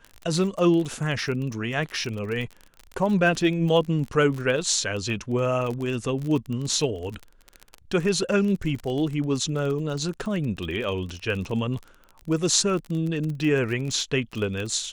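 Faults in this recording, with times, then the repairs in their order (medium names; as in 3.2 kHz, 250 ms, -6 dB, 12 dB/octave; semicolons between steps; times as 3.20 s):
crackle 30 per s -29 dBFS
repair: de-click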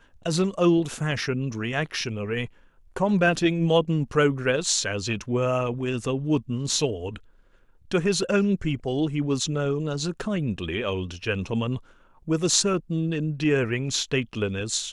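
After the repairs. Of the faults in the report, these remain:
nothing left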